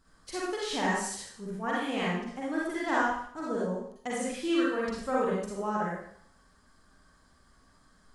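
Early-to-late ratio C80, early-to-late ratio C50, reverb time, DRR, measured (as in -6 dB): 3.0 dB, -2.0 dB, 0.65 s, -6.5 dB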